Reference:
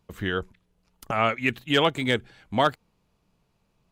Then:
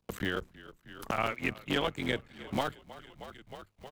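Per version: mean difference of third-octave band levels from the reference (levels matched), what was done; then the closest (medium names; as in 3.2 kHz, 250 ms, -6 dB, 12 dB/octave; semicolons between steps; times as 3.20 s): 7.5 dB: cycle switcher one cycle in 3, muted; gate with hold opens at -58 dBFS; on a send: frequency-shifting echo 314 ms, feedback 58%, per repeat -34 Hz, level -23 dB; on the sum: three bands compressed up and down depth 70%; trim -6 dB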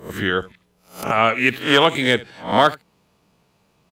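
5.0 dB: reverse spectral sustain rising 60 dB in 0.35 s; in parallel at -2 dB: compression, threshold -30 dBFS, peak gain reduction 14.5 dB; on the sum: high-pass 170 Hz 6 dB/octave; delay 72 ms -19.5 dB; trim +4.5 dB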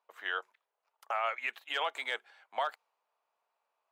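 9.5 dB: high-pass 700 Hz 24 dB/octave; treble shelf 2.2 kHz -9.5 dB; peak limiter -22 dBFS, peak gain reduction 10.5 dB; tape noise reduction on one side only decoder only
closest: second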